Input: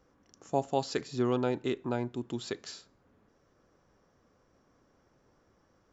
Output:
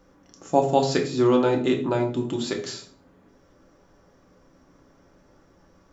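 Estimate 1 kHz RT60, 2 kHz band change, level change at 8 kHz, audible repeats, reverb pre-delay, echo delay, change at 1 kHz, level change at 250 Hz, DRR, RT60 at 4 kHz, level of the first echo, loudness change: 0.40 s, +9.0 dB, no reading, no echo, 3 ms, no echo, +10.0 dB, +10.0 dB, 2.0 dB, 0.35 s, no echo, +10.0 dB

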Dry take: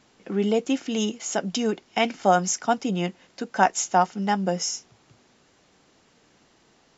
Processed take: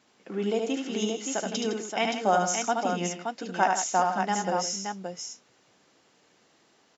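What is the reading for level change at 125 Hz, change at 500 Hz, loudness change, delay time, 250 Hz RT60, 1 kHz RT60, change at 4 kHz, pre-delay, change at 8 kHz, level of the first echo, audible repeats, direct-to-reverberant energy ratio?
-6.0 dB, -2.5 dB, -3.5 dB, 74 ms, no reverb, no reverb, -2.0 dB, no reverb, no reading, -4.0 dB, 3, no reverb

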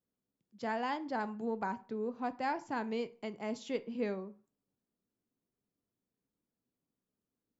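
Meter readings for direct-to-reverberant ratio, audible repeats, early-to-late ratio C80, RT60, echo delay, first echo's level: 11.5 dB, no echo, 24.5 dB, 0.40 s, no echo, no echo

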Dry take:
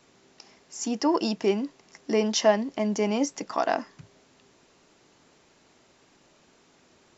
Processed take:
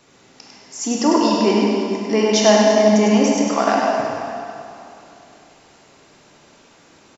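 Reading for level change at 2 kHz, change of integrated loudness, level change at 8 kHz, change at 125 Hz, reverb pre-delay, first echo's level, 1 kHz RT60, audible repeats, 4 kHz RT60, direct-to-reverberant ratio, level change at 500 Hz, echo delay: +10.0 dB, +10.0 dB, no reading, +12.0 dB, 22 ms, -4.0 dB, 2.9 s, 1, 2.3 s, -3.5 dB, +10.0 dB, 100 ms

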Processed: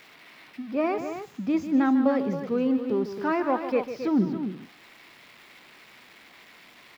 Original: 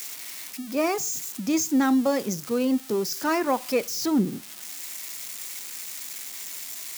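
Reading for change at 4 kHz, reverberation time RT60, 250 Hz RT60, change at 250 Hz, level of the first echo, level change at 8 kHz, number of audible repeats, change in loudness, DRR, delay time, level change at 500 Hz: -13.0 dB, no reverb, no reverb, 0.0 dB, -11.0 dB, under -25 dB, 2, +0.5 dB, no reverb, 149 ms, -0.5 dB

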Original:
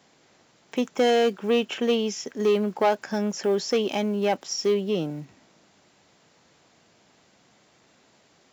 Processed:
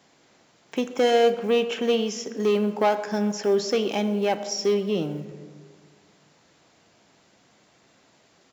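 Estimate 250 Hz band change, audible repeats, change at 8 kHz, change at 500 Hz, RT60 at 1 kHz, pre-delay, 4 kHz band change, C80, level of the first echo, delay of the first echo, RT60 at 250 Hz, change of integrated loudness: +0.5 dB, 1, no reading, +1.0 dB, 1.4 s, 3 ms, +0.5 dB, 13.0 dB, -20.0 dB, 128 ms, 2.0 s, +1.0 dB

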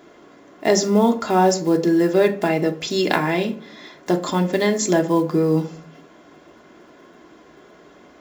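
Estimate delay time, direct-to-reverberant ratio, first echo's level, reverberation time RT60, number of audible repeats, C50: no echo, 3.0 dB, no echo, 0.45 s, no echo, 15.0 dB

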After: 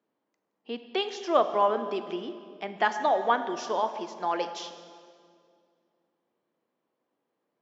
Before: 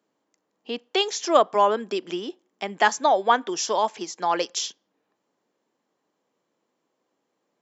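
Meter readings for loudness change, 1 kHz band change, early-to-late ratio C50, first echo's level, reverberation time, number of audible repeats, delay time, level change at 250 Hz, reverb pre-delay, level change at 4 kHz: -5.0 dB, -4.5 dB, 10.0 dB, no echo, 2.2 s, no echo, no echo, -4.0 dB, 5 ms, -8.5 dB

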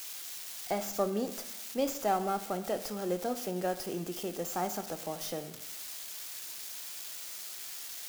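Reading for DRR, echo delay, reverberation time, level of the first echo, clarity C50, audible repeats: 9.5 dB, no echo, 0.90 s, no echo, 12.0 dB, no echo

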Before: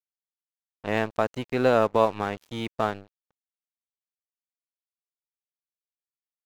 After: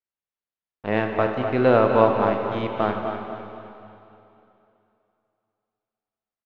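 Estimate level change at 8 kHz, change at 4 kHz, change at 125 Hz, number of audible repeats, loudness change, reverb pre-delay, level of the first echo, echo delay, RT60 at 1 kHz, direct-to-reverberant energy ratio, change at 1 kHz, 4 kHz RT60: no reading, -0.5 dB, +5.5 dB, 4, +4.0 dB, 6 ms, -9.0 dB, 250 ms, 2.9 s, 2.0 dB, +4.5 dB, 2.7 s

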